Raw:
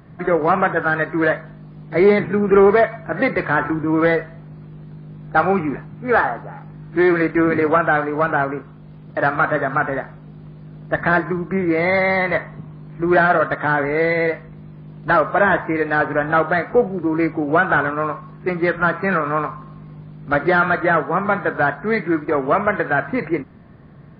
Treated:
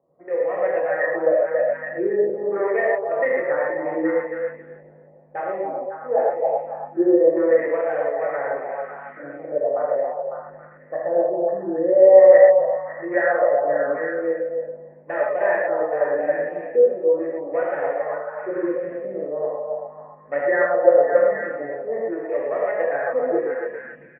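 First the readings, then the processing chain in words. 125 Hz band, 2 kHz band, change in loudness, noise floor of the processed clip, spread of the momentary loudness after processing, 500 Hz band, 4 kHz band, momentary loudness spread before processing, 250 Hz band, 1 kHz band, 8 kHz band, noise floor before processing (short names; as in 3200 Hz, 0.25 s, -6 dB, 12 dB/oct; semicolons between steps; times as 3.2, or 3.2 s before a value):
under -20 dB, -9.5 dB, -2.0 dB, -47 dBFS, 13 LU, +2.0 dB, under -25 dB, 13 LU, -8.0 dB, -8.0 dB, n/a, -40 dBFS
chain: Wiener smoothing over 25 samples; three-band isolator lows -21 dB, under 300 Hz, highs -23 dB, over 2100 Hz; comb 1 ms, depth 30%; AGC gain up to 16.5 dB; vocal tract filter e; LFO low-pass sine 0.41 Hz 250–3400 Hz; on a send: delay with a stepping band-pass 0.275 s, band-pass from 690 Hz, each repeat 0.7 oct, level -1 dB; on the sum: non-linear reverb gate 0.15 s flat, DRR -4.5 dB; gain -3 dB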